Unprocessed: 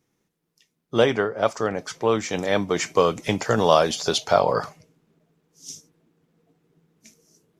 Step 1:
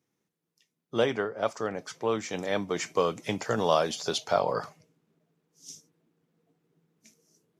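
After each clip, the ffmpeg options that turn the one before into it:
-af "highpass=99,volume=0.447"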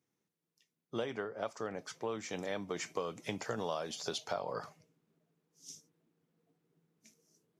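-af "acompressor=threshold=0.0355:ratio=4,volume=0.562"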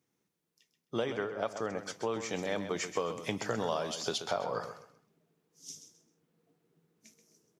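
-af "aecho=1:1:131|262|393:0.316|0.0822|0.0214,volume=1.58"

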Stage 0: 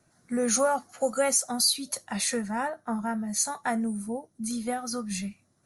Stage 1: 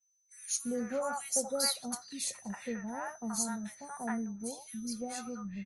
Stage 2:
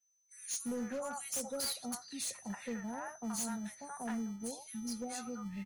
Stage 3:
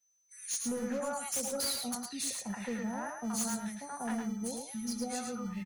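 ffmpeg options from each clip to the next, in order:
-filter_complex "[0:a]aeval=exprs='val(0)+0.00398*sin(2*PI*6100*n/s)':c=same,agate=range=0.0224:threshold=0.01:ratio=3:detection=peak,acrossover=split=740|2500[s0][s1][s2];[s0]adelay=340[s3];[s1]adelay=420[s4];[s3][s4][s2]amix=inputs=3:normalize=0,volume=0.447"
-filter_complex "[0:a]acrossover=split=350|3000[s0][s1][s2];[s1]acompressor=threshold=0.00794:ratio=2[s3];[s0][s3][s2]amix=inputs=3:normalize=0,acrossover=split=150[s4][s5];[s4]acrusher=samples=41:mix=1:aa=0.000001[s6];[s5]asoftclip=type=hard:threshold=0.0224[s7];[s6][s7]amix=inputs=2:normalize=0,volume=0.891"
-af "aecho=1:1:108:0.562,volume=1.41"

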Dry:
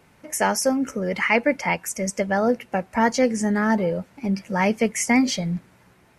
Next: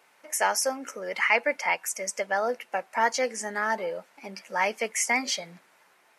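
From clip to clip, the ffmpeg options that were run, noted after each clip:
-af "highpass=640,volume=0.841"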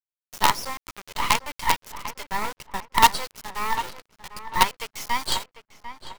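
-filter_complex "[0:a]firequalizer=gain_entry='entry(130,0);entry(220,-15);entry(400,-12);entry(620,-21);entry(1000,9);entry(1700,-19);entry(2500,-6);entry(3800,8);entry(6100,-14);entry(11000,-28)':delay=0.05:min_phase=1,acrusher=bits=4:dc=4:mix=0:aa=0.000001,asplit=2[s0][s1];[s1]adelay=747,lowpass=f=2400:p=1,volume=0.251,asplit=2[s2][s3];[s3]adelay=747,lowpass=f=2400:p=1,volume=0.31,asplit=2[s4][s5];[s5]adelay=747,lowpass=f=2400:p=1,volume=0.31[s6];[s0][s2][s4][s6]amix=inputs=4:normalize=0,volume=2.51"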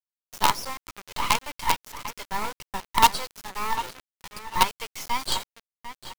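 -af "bandreject=f=1900:w=8.8,aeval=exprs='val(0)*gte(abs(val(0)),0.0168)':c=same,volume=0.841"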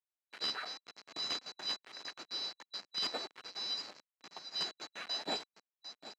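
-af "afftfilt=real='real(if(lt(b,736),b+184*(1-2*mod(floor(b/184),2)),b),0)':imag='imag(if(lt(b,736),b+184*(1-2*mod(floor(b/184),2)),b),0)':win_size=2048:overlap=0.75,asoftclip=type=tanh:threshold=0.119,highpass=250,lowpass=2800,volume=0.668"

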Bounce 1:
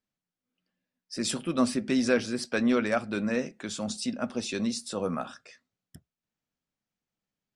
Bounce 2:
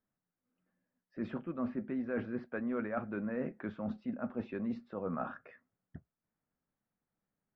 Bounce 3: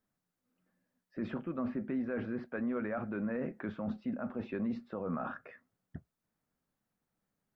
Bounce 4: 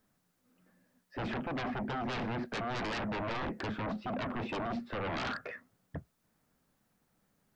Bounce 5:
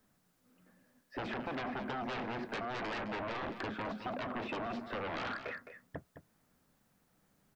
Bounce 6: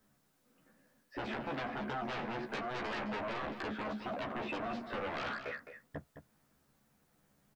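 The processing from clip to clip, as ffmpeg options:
-af "lowpass=f=1800:w=0.5412,lowpass=f=1800:w=1.3066,areverse,acompressor=threshold=0.0158:ratio=6,areverse,volume=1.26"
-af "alimiter=level_in=2.24:limit=0.0631:level=0:latency=1:release=33,volume=0.447,volume=1.5"
-af "aeval=exprs='0.0447*sin(PI/2*3.98*val(0)/0.0447)':c=same,volume=0.531"
-filter_complex "[0:a]acrossover=split=260|3600[s0][s1][s2];[s0]acompressor=threshold=0.00251:ratio=4[s3];[s1]acompressor=threshold=0.0112:ratio=4[s4];[s2]acompressor=threshold=0.00112:ratio=4[s5];[s3][s4][s5]amix=inputs=3:normalize=0,aecho=1:1:212:0.299,volume=1.26"
-filter_complex "[0:a]asplit=2[s0][s1];[s1]volume=56.2,asoftclip=hard,volume=0.0178,volume=0.355[s2];[s0][s2]amix=inputs=2:normalize=0,asplit=2[s3][s4];[s4]adelay=14,volume=0.708[s5];[s3][s5]amix=inputs=2:normalize=0,volume=0.631"

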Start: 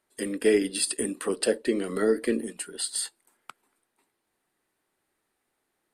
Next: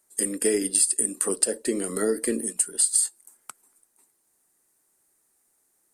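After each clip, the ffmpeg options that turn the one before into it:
-af "highshelf=f=5000:t=q:w=1.5:g=13,acompressor=threshold=0.126:ratio=6"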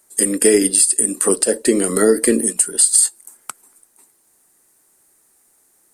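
-af "alimiter=level_in=3.98:limit=0.891:release=50:level=0:latency=1,volume=0.891"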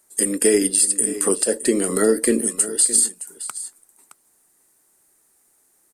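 -af "aecho=1:1:617:0.188,volume=0.668"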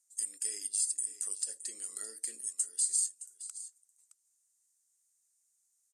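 -af "bandpass=f=6700:t=q:w=2.7:csg=0,volume=0.422"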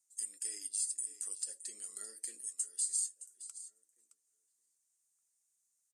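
-filter_complex "[0:a]flanger=delay=4.5:depth=3:regen=57:speed=0.54:shape=triangular,asplit=2[s0][s1];[s1]adelay=1691,volume=0.0631,highshelf=f=4000:g=-38[s2];[s0][s2]amix=inputs=2:normalize=0"

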